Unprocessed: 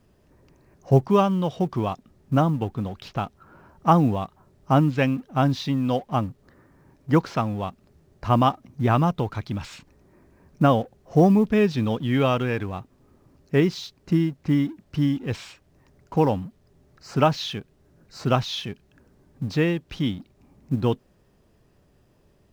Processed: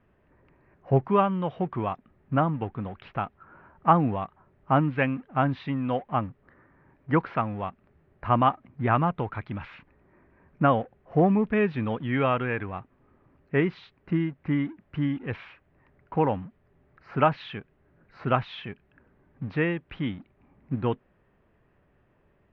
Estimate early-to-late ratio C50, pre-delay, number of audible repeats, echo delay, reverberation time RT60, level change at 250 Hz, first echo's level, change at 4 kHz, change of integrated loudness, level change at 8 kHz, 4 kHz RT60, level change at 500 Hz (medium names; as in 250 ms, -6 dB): no reverb, no reverb, no echo, no echo, no reverb, -5.0 dB, no echo, -10.0 dB, -3.5 dB, no reading, no reverb, -3.5 dB